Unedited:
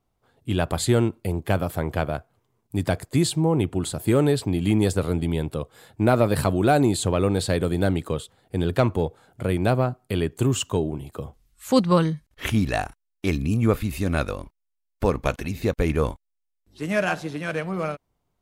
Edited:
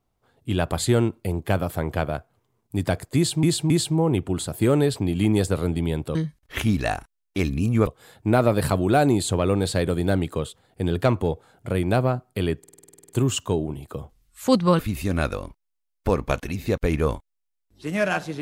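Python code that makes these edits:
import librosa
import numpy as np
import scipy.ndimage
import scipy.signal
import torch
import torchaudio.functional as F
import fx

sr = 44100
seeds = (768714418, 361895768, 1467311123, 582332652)

y = fx.edit(x, sr, fx.repeat(start_s=3.16, length_s=0.27, count=3),
    fx.stutter(start_s=10.33, slice_s=0.05, count=11),
    fx.move(start_s=12.03, length_s=1.72, to_s=5.61), tone=tone)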